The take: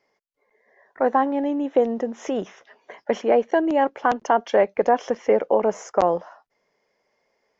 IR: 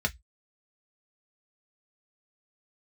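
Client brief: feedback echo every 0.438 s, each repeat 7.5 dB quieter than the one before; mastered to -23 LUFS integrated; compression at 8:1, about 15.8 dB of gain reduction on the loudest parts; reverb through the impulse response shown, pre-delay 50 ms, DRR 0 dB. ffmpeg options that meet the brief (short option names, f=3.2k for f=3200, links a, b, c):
-filter_complex "[0:a]acompressor=threshold=-30dB:ratio=8,aecho=1:1:438|876|1314|1752|2190:0.422|0.177|0.0744|0.0312|0.0131,asplit=2[a][b];[1:a]atrim=start_sample=2205,adelay=50[c];[b][c]afir=irnorm=-1:irlink=0,volume=-8dB[d];[a][d]amix=inputs=2:normalize=0,volume=9dB"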